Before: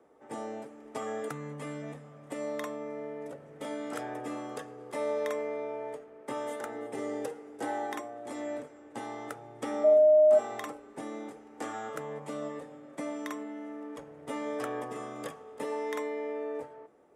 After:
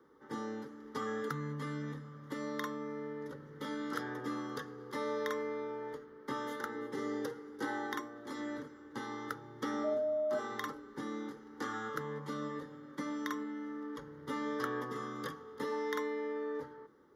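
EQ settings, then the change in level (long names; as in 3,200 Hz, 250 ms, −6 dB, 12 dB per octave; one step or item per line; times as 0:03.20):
mains-hum notches 60/120/180/240/300 Hz
phaser with its sweep stopped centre 2,500 Hz, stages 6
+3.5 dB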